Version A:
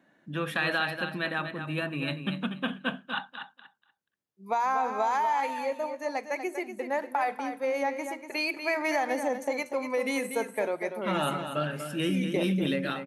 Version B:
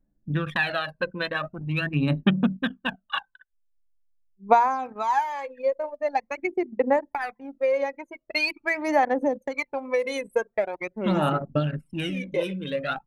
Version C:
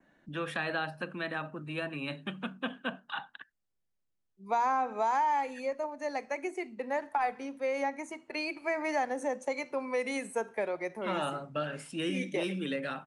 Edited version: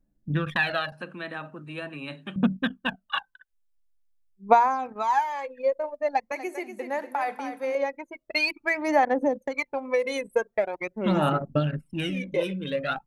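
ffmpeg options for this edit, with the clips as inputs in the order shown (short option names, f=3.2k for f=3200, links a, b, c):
-filter_complex "[1:a]asplit=3[a][b][c];[a]atrim=end=0.922[d];[2:a]atrim=start=0.918:end=2.362[e];[b]atrim=start=2.358:end=6.322[f];[0:a]atrim=start=6.318:end=7.752[g];[c]atrim=start=7.748[h];[d][e]acrossfade=d=0.004:c1=hsin:c2=hsin[i];[i][f]acrossfade=d=0.004:c1=hsin:c2=hsin[j];[j][g]acrossfade=d=0.004:c1=hsin:c2=hsin[k];[k][h]acrossfade=d=0.004:c1=hsin:c2=hsin"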